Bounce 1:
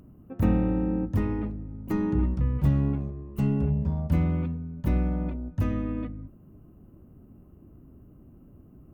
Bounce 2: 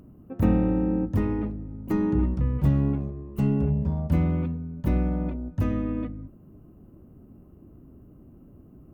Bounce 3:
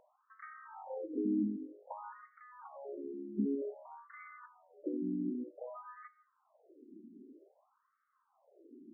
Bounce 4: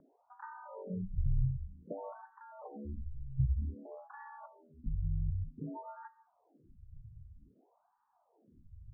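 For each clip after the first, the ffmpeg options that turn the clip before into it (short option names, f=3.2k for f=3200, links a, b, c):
-af "equalizer=f=400:t=o:w=2.5:g=3"
-af "acompressor=threshold=-25dB:ratio=3,afftfilt=real='re*between(b*sr/1024,270*pow(1600/270,0.5+0.5*sin(2*PI*0.53*pts/sr))/1.41,270*pow(1600/270,0.5+0.5*sin(2*PI*0.53*pts/sr))*1.41)':imag='im*between(b*sr/1024,270*pow(1600/270,0.5+0.5*sin(2*PI*0.53*pts/sr))/1.41,270*pow(1600/270,0.5+0.5*sin(2*PI*0.53*pts/sr))*1.41)':win_size=1024:overlap=0.75"
-af "highpass=f=150:t=q:w=0.5412,highpass=f=150:t=q:w=1.307,lowpass=f=2k:t=q:w=0.5176,lowpass=f=2k:t=q:w=0.7071,lowpass=f=2k:t=q:w=1.932,afreqshift=-340,volume=3.5dB"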